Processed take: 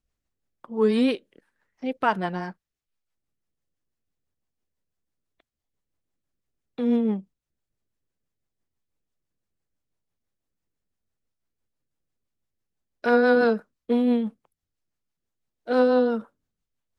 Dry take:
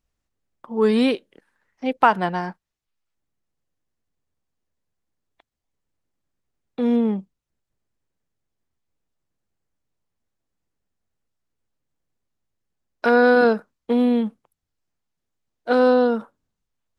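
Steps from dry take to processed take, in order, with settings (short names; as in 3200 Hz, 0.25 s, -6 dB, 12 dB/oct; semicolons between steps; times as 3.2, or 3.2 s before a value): rotary speaker horn 6 Hz; gain -1.5 dB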